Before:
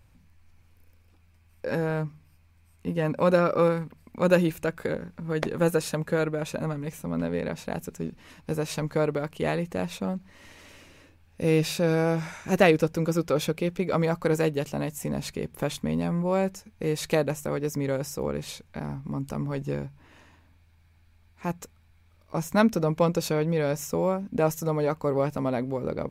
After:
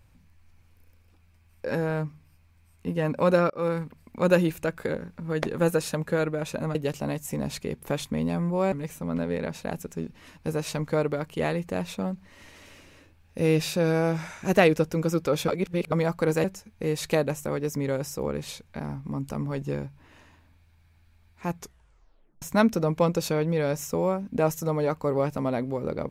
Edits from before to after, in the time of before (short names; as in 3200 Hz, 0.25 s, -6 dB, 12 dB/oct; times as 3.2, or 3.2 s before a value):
3.5–3.77 fade in
13.51–13.95 reverse
14.47–16.44 move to 6.75
21.55 tape stop 0.87 s